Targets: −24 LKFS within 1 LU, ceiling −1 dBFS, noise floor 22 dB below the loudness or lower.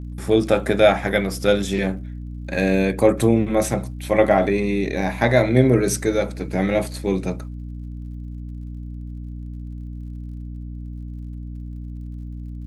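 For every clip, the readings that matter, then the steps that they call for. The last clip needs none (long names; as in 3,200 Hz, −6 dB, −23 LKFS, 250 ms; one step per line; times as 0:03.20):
crackle rate 52 per second; mains hum 60 Hz; hum harmonics up to 300 Hz; level of the hum −29 dBFS; integrated loudness −20.0 LKFS; sample peak −1.5 dBFS; target loudness −24.0 LKFS
→ click removal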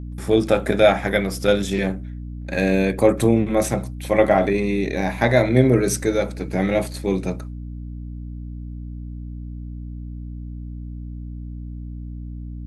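crackle rate 0.079 per second; mains hum 60 Hz; hum harmonics up to 300 Hz; level of the hum −29 dBFS
→ hum removal 60 Hz, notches 5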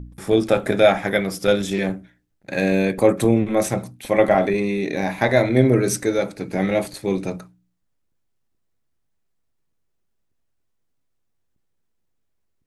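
mains hum none found; integrated loudness −20.0 LKFS; sample peak −2.0 dBFS; target loudness −24.0 LKFS
→ level −4 dB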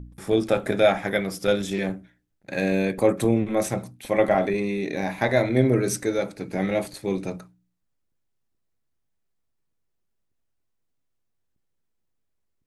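integrated loudness −24.0 LKFS; sample peak −6.0 dBFS; background noise floor −75 dBFS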